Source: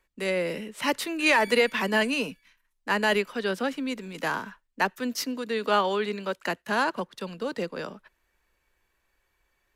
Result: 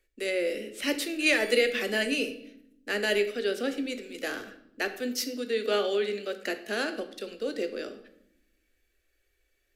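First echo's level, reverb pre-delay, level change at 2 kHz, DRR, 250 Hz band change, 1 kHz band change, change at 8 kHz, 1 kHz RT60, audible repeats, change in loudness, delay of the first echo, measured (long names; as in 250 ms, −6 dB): no echo audible, 8 ms, −3.0 dB, 7.5 dB, −2.5 dB, −12.5 dB, +0.5 dB, 0.70 s, no echo audible, −2.0 dB, no echo audible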